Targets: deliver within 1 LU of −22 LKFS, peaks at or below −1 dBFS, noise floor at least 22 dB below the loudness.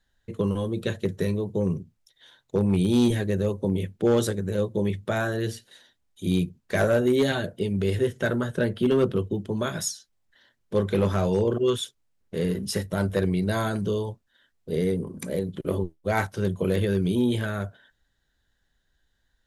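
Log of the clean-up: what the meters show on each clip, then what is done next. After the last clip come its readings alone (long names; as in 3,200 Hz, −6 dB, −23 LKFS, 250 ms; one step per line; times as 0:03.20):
share of clipped samples 0.3%; peaks flattened at −14.5 dBFS; integrated loudness −26.0 LKFS; sample peak −14.5 dBFS; target loudness −22.0 LKFS
→ clipped peaks rebuilt −14.5 dBFS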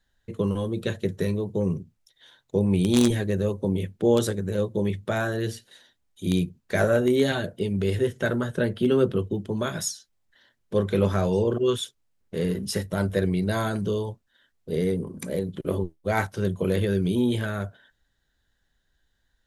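share of clipped samples 0.0%; integrated loudness −26.0 LKFS; sample peak −5.5 dBFS; target loudness −22.0 LKFS
→ level +4 dB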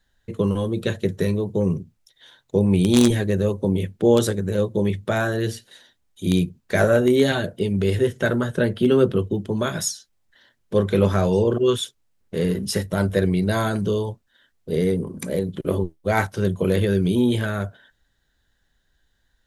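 integrated loudness −22.0 LKFS; sample peak −1.5 dBFS; background noise floor −69 dBFS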